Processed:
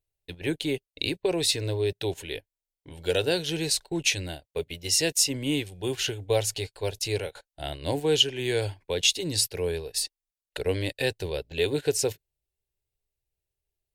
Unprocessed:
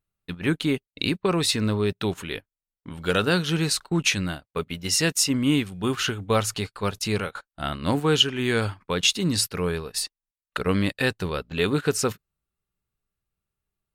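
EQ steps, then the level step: static phaser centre 510 Hz, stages 4; 0.0 dB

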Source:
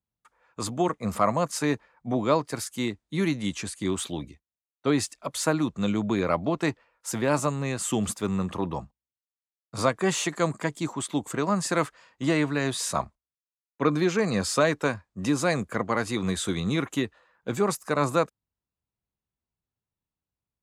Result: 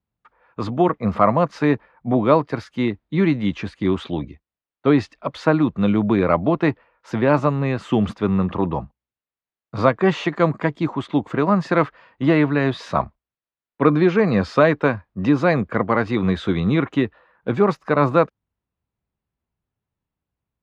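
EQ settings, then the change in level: distance through air 300 m; treble shelf 7.9 kHz -8.5 dB; +8.5 dB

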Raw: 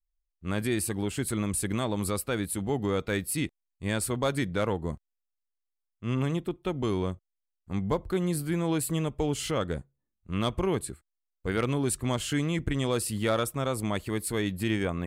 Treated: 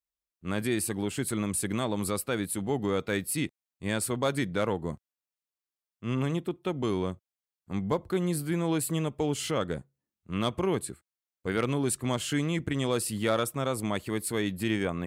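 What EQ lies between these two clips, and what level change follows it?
high-pass 110 Hz 12 dB/octave; 0.0 dB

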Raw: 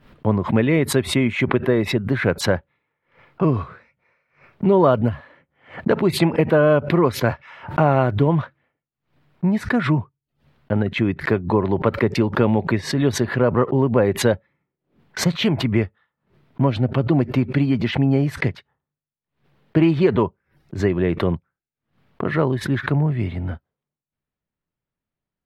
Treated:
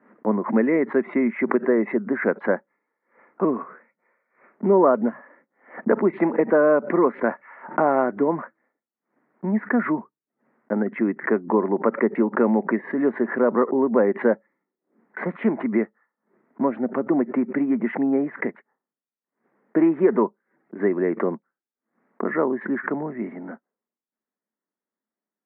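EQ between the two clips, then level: Chebyshev band-pass 210–2000 Hz, order 4; distance through air 180 m; 0.0 dB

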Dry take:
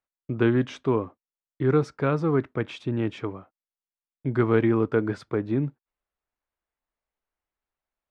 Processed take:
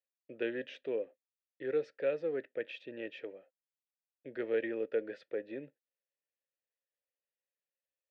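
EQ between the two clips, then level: vowel filter e; high-pass 160 Hz 12 dB/octave; peaking EQ 4.2 kHz +9 dB 1.6 oct; 0.0 dB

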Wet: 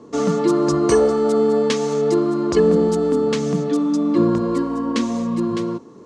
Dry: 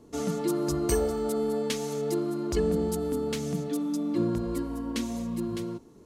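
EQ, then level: cabinet simulation 170–7400 Hz, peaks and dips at 500 Hz +5 dB, 1.1 kHz +10 dB, 1.7 kHz +3 dB; bass shelf 320 Hz +6 dB; +7.5 dB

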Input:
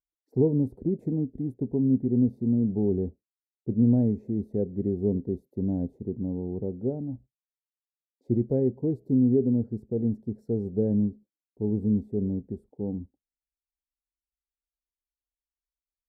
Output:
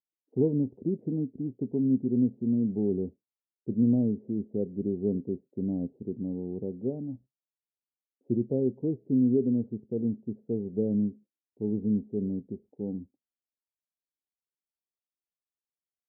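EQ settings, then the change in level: high-pass 160 Hz 12 dB/octave; Bessel low-pass 590 Hz, order 2; distance through air 410 m; 0.0 dB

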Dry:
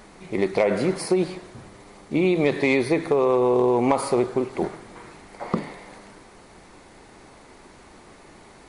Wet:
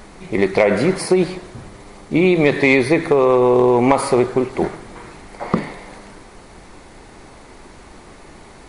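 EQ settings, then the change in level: dynamic bell 1.9 kHz, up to +4 dB, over -40 dBFS, Q 1.4; bass shelf 71 Hz +8.5 dB; +5.5 dB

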